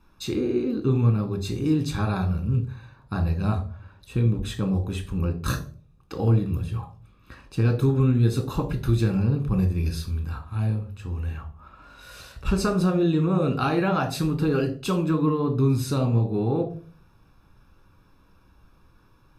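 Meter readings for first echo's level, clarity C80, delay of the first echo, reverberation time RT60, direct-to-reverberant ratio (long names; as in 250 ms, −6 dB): no echo audible, 17.0 dB, no echo audible, 0.45 s, 4.0 dB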